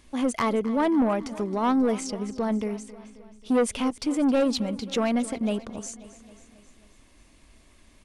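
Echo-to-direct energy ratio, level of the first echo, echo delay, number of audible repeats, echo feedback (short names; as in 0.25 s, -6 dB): -15.0 dB, -17.0 dB, 0.268 s, 4, 58%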